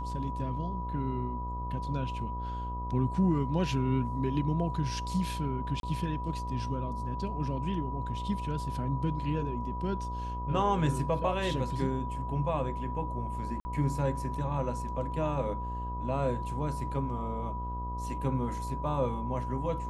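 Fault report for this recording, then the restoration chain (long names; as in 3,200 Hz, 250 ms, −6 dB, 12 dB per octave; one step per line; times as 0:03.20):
mains buzz 60 Hz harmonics 21 −37 dBFS
whistle 980 Hz −37 dBFS
0:05.80–0:05.83: drop-out 32 ms
0:13.60–0:13.65: drop-out 50 ms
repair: notch filter 980 Hz, Q 30
hum removal 60 Hz, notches 21
repair the gap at 0:05.80, 32 ms
repair the gap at 0:13.60, 50 ms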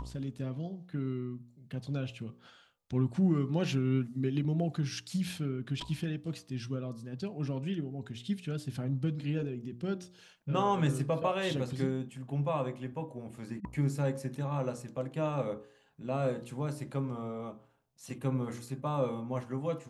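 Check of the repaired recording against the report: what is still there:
none of them is left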